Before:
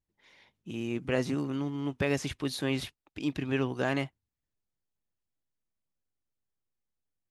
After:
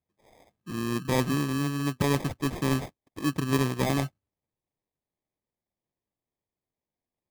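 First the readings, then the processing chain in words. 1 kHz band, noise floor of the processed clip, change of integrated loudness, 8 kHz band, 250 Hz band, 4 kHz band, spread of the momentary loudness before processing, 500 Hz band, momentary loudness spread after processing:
+8.0 dB, under -85 dBFS, +4.0 dB, +7.0 dB, +4.0 dB, +3.0 dB, 9 LU, +1.5 dB, 6 LU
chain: HPF 84 Hz; dynamic EQ 140 Hz, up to +6 dB, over -45 dBFS, Q 0.89; sample-and-hold 31×; gain +1.5 dB

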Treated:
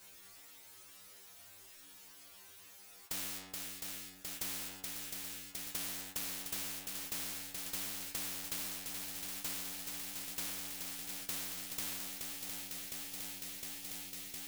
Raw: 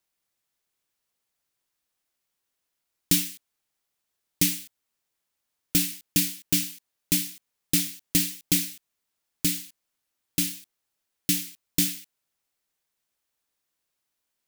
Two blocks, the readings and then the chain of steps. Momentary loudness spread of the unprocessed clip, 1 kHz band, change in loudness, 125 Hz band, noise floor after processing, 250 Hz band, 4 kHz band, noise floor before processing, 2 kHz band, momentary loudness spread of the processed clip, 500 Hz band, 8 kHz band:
11 LU, n/a, -14.0 dB, -20.5 dB, -57 dBFS, -20.0 dB, -11.0 dB, -82 dBFS, -7.5 dB, 15 LU, -6.0 dB, -11.0 dB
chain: metallic resonator 94 Hz, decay 0.64 s, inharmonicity 0.002; limiter -26.5 dBFS, peak gain reduction 7.5 dB; swung echo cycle 0.71 s, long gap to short 1.5:1, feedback 71%, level -19 dB; power-law curve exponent 0.7; spectral compressor 4:1; gain +1 dB

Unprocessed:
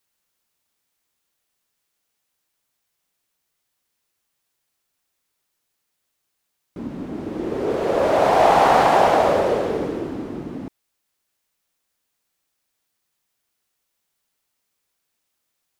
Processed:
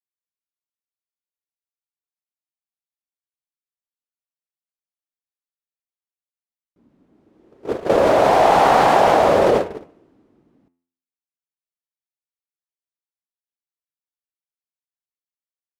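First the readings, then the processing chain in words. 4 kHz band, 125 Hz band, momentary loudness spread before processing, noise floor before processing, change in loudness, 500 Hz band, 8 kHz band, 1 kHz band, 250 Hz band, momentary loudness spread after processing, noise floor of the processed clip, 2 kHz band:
+2.0 dB, +0.5 dB, 18 LU, -76 dBFS, +3.5 dB, +2.0 dB, +2.0 dB, +1.5 dB, 0.0 dB, 12 LU, under -85 dBFS, +2.0 dB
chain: gate -19 dBFS, range -37 dB; de-hum 86.13 Hz, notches 34; in parallel at +1.5 dB: negative-ratio compressor -23 dBFS, ratio -1; on the sum: gain -1 dB

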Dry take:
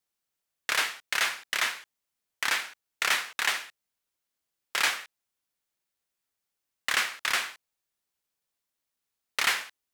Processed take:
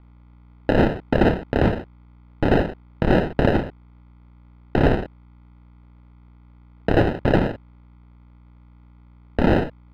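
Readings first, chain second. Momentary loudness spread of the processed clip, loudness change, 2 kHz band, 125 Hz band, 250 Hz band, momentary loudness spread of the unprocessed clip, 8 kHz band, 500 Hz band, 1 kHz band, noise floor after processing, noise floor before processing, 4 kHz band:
11 LU, +6.5 dB, -2.5 dB, n/a, +34.0 dB, 11 LU, under -20 dB, +25.0 dB, +7.5 dB, -50 dBFS, -85 dBFS, -8.0 dB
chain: hum 60 Hz, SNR 31 dB; sample-and-hold 39×; air absorption 410 m; maximiser +22.5 dB; gain -6.5 dB

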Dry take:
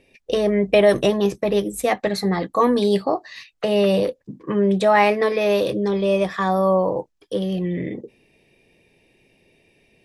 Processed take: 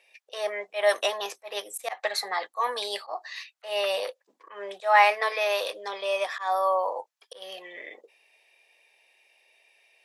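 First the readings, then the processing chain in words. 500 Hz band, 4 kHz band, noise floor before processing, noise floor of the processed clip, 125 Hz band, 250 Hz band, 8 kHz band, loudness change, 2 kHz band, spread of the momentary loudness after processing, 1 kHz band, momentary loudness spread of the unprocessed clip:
-10.5 dB, -1.0 dB, -66 dBFS, -75 dBFS, under -40 dB, under -30 dB, n/a, -7.0 dB, -1.0 dB, 19 LU, -2.5 dB, 12 LU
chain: HPF 700 Hz 24 dB/oct; auto swell 0.149 s

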